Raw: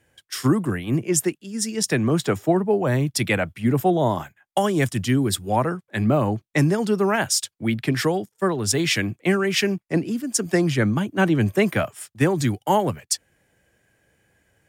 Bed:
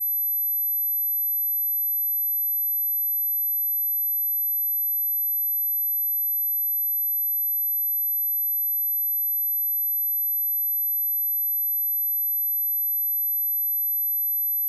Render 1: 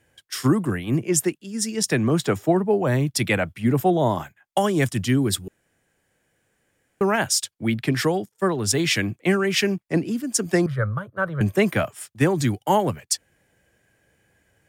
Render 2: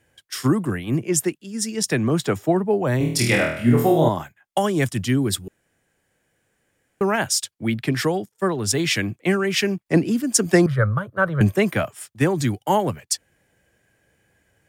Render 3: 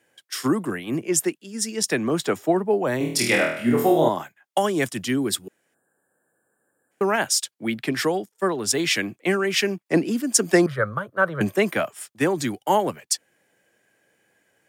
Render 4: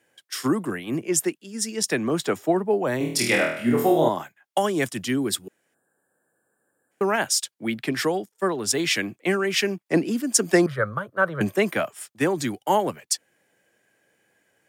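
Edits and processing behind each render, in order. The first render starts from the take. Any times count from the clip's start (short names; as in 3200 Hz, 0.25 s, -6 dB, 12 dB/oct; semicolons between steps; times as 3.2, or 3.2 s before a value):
5.48–7.01 room tone; 10.66–11.41 EQ curve 130 Hz 0 dB, 200 Hz -15 dB, 300 Hz -26 dB, 530 Hz +2 dB, 790 Hz -12 dB, 1300 Hz +5 dB, 2600 Hz -22 dB, 3800 Hz -14 dB, 6800 Hz -26 dB, 10000 Hz -14 dB
2.98–4.09 flutter echo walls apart 4.3 m, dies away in 0.61 s; 9.86–11.54 gain +4.5 dB
HPF 240 Hz 12 dB/oct; 5.74–6.91 spectral gain 1800–7100 Hz -26 dB
gain -1 dB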